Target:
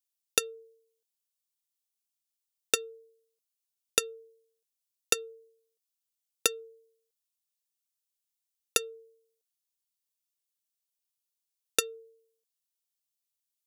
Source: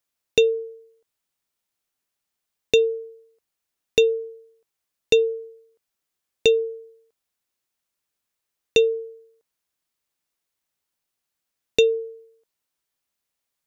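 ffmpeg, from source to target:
-af "aexciter=amount=5:drive=5:freq=2.6k,aeval=exprs='1.58*(cos(1*acos(clip(val(0)/1.58,-1,1)))-cos(1*PI/2))+0.631*(cos(3*acos(clip(val(0)/1.58,-1,1)))-cos(3*PI/2))':c=same,volume=-7.5dB"

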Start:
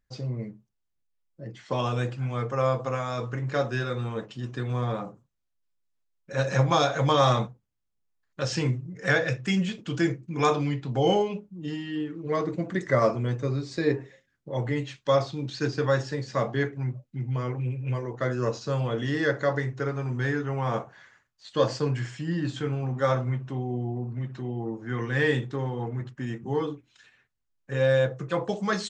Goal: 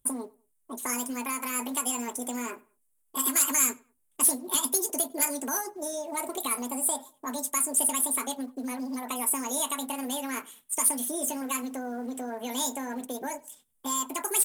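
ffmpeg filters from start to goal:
-filter_complex "[0:a]highshelf=f=3.3k:t=q:w=3:g=12.5,acrossover=split=1800[a][b];[a]acompressor=threshold=-33dB:ratio=6[c];[c][b]amix=inputs=2:normalize=0,acrusher=bits=7:mode=log:mix=0:aa=0.000001,asplit=2[d][e];[e]aeval=exprs='0.75*sin(PI/2*4.47*val(0)/0.75)':c=same,volume=-10dB[f];[d][f]amix=inputs=2:normalize=0,asplit=2[g][h];[h]adelay=200,lowpass=f=1.3k:p=1,volume=-23dB,asplit=2[i][j];[j]adelay=200,lowpass=f=1.3k:p=1,volume=0.3[k];[g][i][k]amix=inputs=3:normalize=0,asetrate=88200,aresample=44100,volume=-8.5dB"

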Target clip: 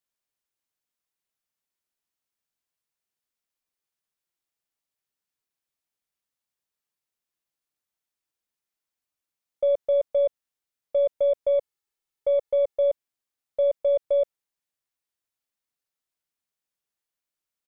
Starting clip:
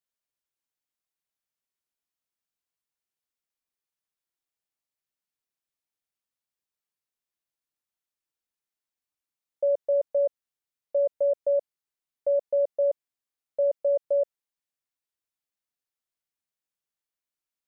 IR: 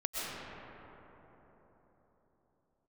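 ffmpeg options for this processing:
-filter_complex "[0:a]asplit=3[a][b][c];[a]afade=t=out:st=11.48:d=0.02[d];[b]aecho=1:1:2.3:0.47,afade=t=in:st=11.48:d=0.02,afade=t=out:st=12.77:d=0.02[e];[c]afade=t=in:st=12.77:d=0.02[f];[d][e][f]amix=inputs=3:normalize=0,aeval=exprs='0.119*(cos(1*acos(clip(val(0)/0.119,-1,1)))-cos(1*PI/2))+0.00266*(cos(6*acos(clip(val(0)/0.119,-1,1)))-cos(6*PI/2))':c=same,volume=2dB"

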